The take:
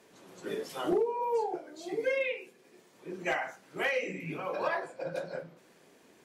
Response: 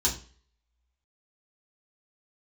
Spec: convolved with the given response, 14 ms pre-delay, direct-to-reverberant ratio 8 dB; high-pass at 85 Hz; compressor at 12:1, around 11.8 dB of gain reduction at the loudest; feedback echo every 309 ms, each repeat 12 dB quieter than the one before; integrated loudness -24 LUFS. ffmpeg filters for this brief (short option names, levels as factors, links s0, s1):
-filter_complex "[0:a]highpass=85,acompressor=threshold=0.0158:ratio=12,aecho=1:1:309|618|927:0.251|0.0628|0.0157,asplit=2[s0][s1];[1:a]atrim=start_sample=2205,adelay=14[s2];[s1][s2]afir=irnorm=-1:irlink=0,volume=0.15[s3];[s0][s3]amix=inputs=2:normalize=0,volume=6.68"